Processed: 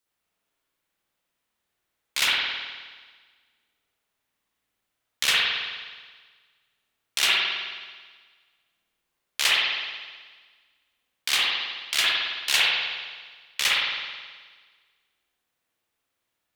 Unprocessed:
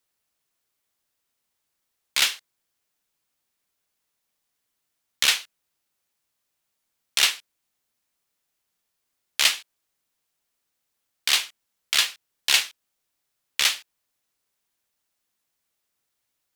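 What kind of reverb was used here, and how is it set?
spring reverb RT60 1.5 s, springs 53 ms, chirp 45 ms, DRR −7 dB
level −4.5 dB

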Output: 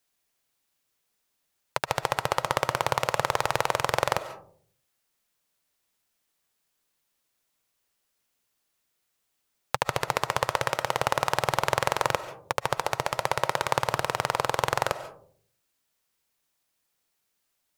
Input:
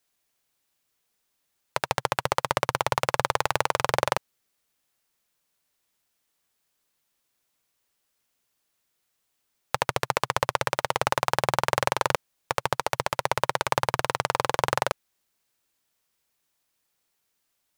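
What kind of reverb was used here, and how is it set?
comb and all-pass reverb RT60 0.53 s, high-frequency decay 0.3×, pre-delay 100 ms, DRR 12.5 dB
level −1 dB

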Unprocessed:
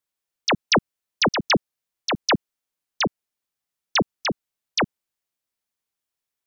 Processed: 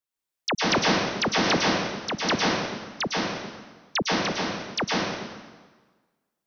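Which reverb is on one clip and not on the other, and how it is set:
dense smooth reverb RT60 1.4 s, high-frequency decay 0.85×, pre-delay 95 ms, DRR −4.5 dB
level −6 dB

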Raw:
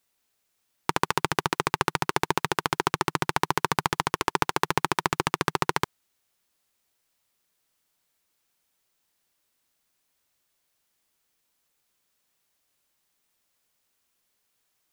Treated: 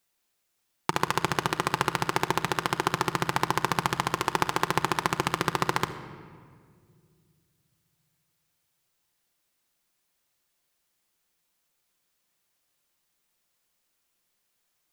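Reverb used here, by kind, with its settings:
rectangular room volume 3,600 cubic metres, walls mixed, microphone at 0.86 metres
level −1.5 dB

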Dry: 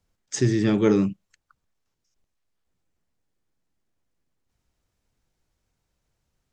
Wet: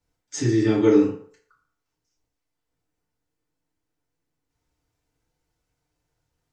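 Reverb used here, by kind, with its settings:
feedback delay network reverb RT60 0.54 s, low-frequency decay 0.7×, high-frequency decay 0.65×, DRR −7.5 dB
level −8 dB

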